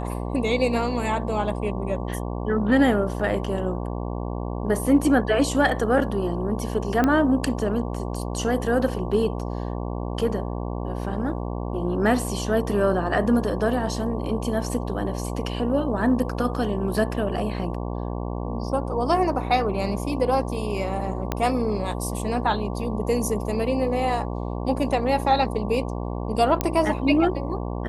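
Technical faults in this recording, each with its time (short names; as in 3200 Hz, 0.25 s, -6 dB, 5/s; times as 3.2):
buzz 60 Hz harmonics 19 -29 dBFS
7.04 pop -9 dBFS
21.32 pop -10 dBFS
26.61 pop -7 dBFS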